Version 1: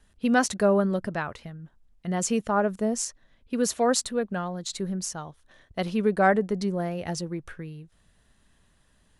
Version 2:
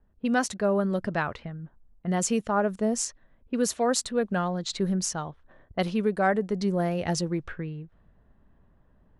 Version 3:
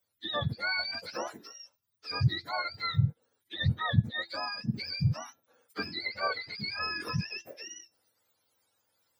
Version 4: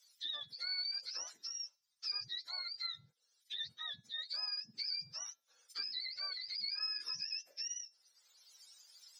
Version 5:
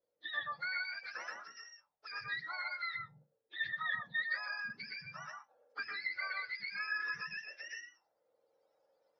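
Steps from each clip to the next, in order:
speech leveller within 4 dB 0.5 s; low-pass that shuts in the quiet parts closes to 880 Hz, open at −22 dBFS
frequency axis turned over on the octave scale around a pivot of 940 Hz; tuned comb filter 340 Hz, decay 0.33 s, harmonics all, mix 50%
resonant band-pass 5,400 Hz, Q 3.1; multiband upward and downward compressor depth 70%; level +3 dB
on a send at −1 dB: convolution reverb RT60 0.15 s, pre-delay 122 ms; on the sum: envelope-controlled low-pass 450–1,800 Hz up, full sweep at −39.5 dBFS; level +4.5 dB

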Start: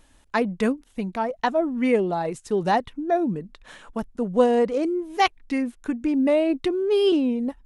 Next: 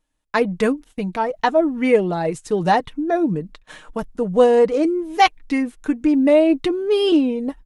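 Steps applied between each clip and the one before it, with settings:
noise gate −46 dBFS, range −23 dB
comb filter 6.5 ms, depth 42%
level +4 dB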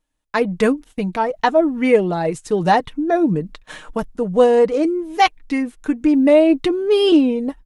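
automatic gain control gain up to 7.5 dB
level −1.5 dB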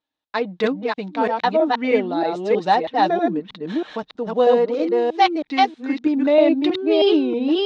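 delay that plays each chunk backwards 319 ms, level −1 dB
loudspeaker in its box 160–5,300 Hz, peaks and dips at 160 Hz −9 dB, 790 Hz +4 dB, 3,800 Hz +8 dB
level −5 dB

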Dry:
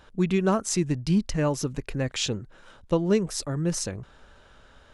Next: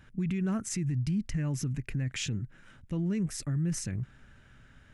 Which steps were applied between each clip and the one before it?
graphic EQ with 10 bands 125 Hz +10 dB, 250 Hz +4 dB, 500 Hz −9 dB, 1,000 Hz −8 dB, 2,000 Hz +7 dB, 4,000 Hz −8 dB
brickwall limiter −20.5 dBFS, peak gain reduction 11 dB
level −3.5 dB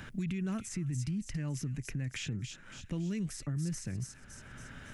delay with a high-pass on its return 279 ms, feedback 33%, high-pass 2,900 Hz, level −6.5 dB
multiband upward and downward compressor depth 70%
level −5 dB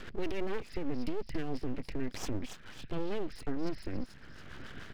rotating-speaker cabinet horn 7 Hz
downsampling to 11,025 Hz
full-wave rectification
level +6 dB

